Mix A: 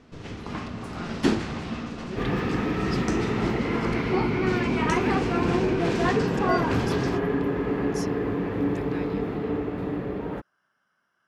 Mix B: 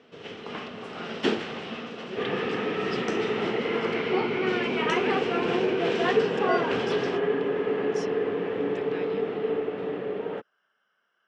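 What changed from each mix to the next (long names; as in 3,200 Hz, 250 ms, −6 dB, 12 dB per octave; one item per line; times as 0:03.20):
master: add loudspeaker in its box 270–6,900 Hz, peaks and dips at 300 Hz −6 dB, 450 Hz +6 dB, 1,000 Hz −4 dB, 3,000 Hz +7 dB, 4,600 Hz −5 dB, 6,600 Hz −7 dB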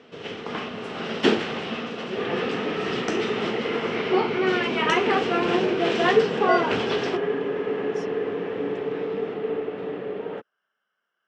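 speech −5.5 dB
first sound +5.5 dB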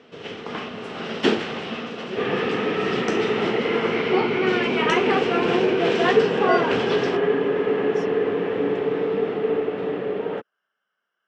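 second sound +5.0 dB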